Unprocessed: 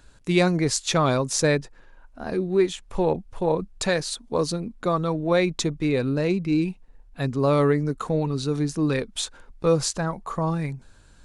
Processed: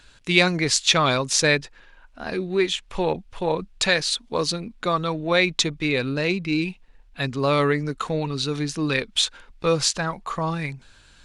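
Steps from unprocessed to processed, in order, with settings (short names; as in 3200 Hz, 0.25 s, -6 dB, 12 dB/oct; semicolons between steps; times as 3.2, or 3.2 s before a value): bell 3000 Hz +13 dB 2.3 oct; gain -2.5 dB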